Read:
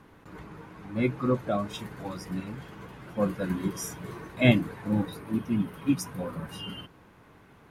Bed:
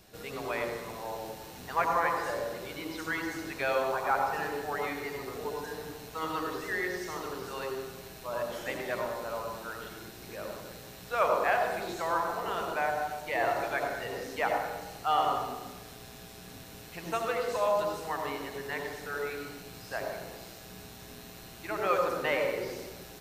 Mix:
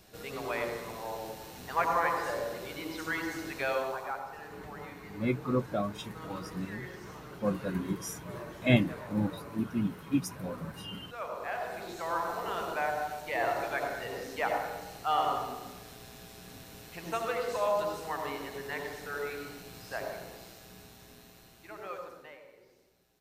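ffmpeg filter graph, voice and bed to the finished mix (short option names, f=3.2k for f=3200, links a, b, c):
-filter_complex "[0:a]adelay=4250,volume=-3.5dB[a];[1:a]volume=10.5dB,afade=t=out:st=3.57:d=0.66:silence=0.251189,afade=t=in:st=11.34:d=1.01:silence=0.281838,afade=t=out:st=19.94:d=2.47:silence=0.0668344[b];[a][b]amix=inputs=2:normalize=0"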